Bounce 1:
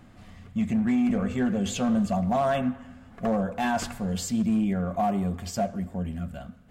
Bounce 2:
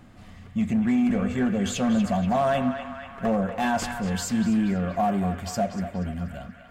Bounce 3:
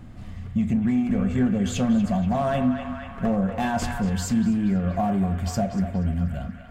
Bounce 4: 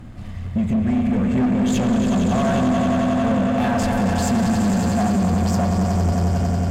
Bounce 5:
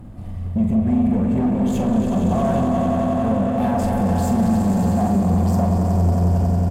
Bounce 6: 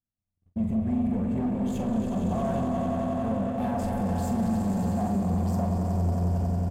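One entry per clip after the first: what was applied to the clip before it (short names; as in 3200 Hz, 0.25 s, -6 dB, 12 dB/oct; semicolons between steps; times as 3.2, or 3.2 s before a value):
narrowing echo 0.239 s, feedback 80%, band-pass 1800 Hz, level -6.5 dB; gain +1.5 dB
low shelf 220 Hz +11.5 dB; compressor 2.5:1, threshold -21 dBFS, peak gain reduction 5.5 dB; on a send at -13.5 dB: reverb RT60 0.35 s, pre-delay 22 ms
swelling echo 91 ms, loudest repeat 5, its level -8 dB; soft clip -19.5 dBFS, distortion -11 dB; added harmonics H 8 -32 dB, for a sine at -19.5 dBFS; gain +5 dB
band shelf 3100 Hz -9.5 dB 2.8 oct; doubler 45 ms -7 dB
gate -21 dBFS, range -49 dB; gain -8.5 dB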